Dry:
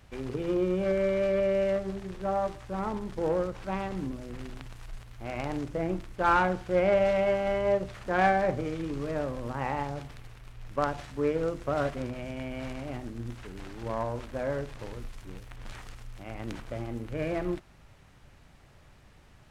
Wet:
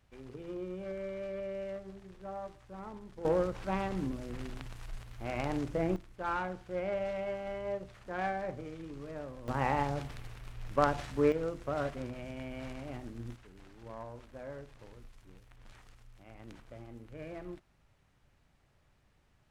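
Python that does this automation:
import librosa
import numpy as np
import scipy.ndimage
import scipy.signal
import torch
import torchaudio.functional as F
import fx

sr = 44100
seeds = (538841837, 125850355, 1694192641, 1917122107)

y = fx.gain(x, sr, db=fx.steps((0.0, -13.0), (3.25, -1.0), (5.96, -11.0), (9.48, 1.0), (11.32, -5.5), (13.36, -13.0)))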